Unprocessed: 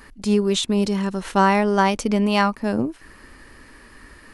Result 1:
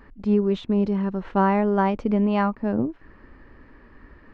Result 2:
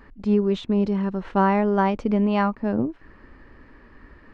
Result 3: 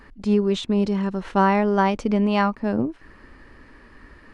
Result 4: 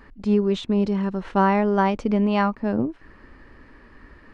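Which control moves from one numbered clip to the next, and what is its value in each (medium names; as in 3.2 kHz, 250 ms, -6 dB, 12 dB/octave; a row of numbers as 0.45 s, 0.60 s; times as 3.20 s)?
tape spacing loss, at 10 kHz: 46 dB, 38 dB, 20 dB, 29 dB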